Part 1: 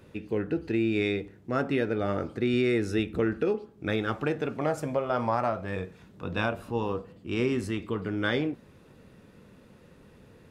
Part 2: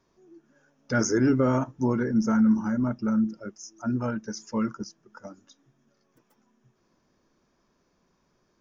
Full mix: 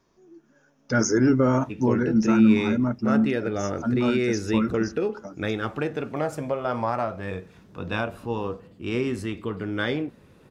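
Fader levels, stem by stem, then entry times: +1.0, +2.5 dB; 1.55, 0.00 s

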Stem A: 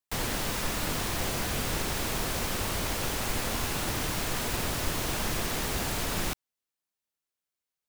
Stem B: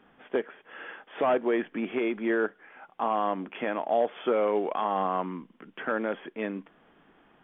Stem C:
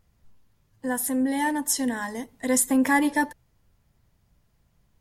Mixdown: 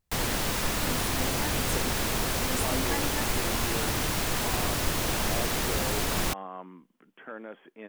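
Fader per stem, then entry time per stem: +2.5, -12.0, -14.5 dB; 0.00, 1.40, 0.00 s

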